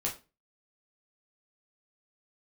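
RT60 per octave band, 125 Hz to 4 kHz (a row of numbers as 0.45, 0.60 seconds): 0.40, 0.35, 0.30, 0.25, 0.25, 0.25 seconds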